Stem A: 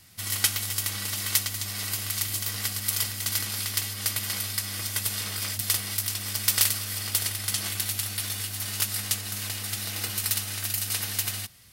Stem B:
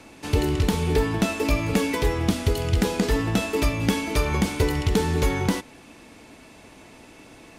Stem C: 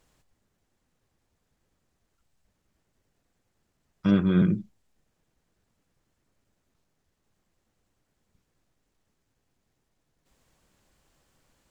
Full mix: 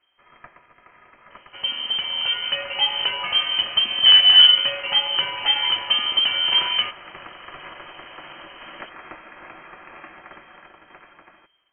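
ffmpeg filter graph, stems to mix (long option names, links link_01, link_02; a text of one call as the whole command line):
ffmpeg -i stem1.wav -i stem2.wav -i stem3.wav -filter_complex "[0:a]highpass=frequency=470:width=0.5412,highpass=frequency=470:width=1.3066,tiltshelf=frequency=970:gain=3,volume=-10dB[link_01];[1:a]adelay=1300,volume=-7.5dB[link_02];[2:a]aecho=1:1:4.9:0.65,volume=-1.5dB[link_03];[link_01][link_02][link_03]amix=inputs=3:normalize=0,equalizer=frequency=390:width=1.2:gain=-11.5,dynaudnorm=framelen=620:gausssize=7:maxgain=15dB,lowpass=frequency=2700:width_type=q:width=0.5098,lowpass=frequency=2700:width_type=q:width=0.6013,lowpass=frequency=2700:width_type=q:width=0.9,lowpass=frequency=2700:width_type=q:width=2.563,afreqshift=-3200" out.wav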